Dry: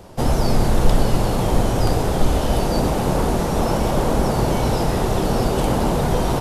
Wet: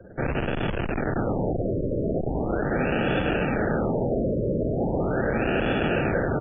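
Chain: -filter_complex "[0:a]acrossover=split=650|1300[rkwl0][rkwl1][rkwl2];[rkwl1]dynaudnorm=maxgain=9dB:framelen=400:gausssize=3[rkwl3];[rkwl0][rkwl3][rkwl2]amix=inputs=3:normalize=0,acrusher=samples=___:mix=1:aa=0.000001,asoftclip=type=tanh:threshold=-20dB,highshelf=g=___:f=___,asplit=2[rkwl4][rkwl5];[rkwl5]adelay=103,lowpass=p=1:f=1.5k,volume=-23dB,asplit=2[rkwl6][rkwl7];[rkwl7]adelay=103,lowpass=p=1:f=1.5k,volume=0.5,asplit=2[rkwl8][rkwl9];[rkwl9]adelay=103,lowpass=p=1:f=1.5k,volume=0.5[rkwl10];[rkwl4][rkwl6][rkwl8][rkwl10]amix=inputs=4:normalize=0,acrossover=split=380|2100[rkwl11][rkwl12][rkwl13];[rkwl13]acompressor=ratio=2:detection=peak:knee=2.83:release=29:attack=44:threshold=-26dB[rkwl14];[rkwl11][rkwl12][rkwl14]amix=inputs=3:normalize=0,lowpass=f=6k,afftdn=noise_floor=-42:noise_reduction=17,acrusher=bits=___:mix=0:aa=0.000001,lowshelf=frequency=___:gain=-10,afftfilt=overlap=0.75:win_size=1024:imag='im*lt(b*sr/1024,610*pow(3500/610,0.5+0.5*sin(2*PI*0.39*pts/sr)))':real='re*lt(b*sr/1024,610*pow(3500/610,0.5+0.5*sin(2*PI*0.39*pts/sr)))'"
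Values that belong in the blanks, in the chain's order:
42, 8.5, 2.5k, 10, 68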